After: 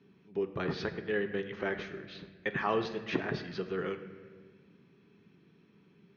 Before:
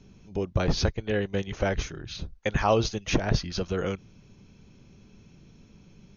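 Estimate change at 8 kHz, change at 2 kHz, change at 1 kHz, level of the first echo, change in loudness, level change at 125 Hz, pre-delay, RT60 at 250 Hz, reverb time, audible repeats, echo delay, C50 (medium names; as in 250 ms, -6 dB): no reading, -2.5 dB, -6.5 dB, no echo, -6.5 dB, -13.5 dB, 7 ms, 2.2 s, 1.5 s, no echo, no echo, 10.0 dB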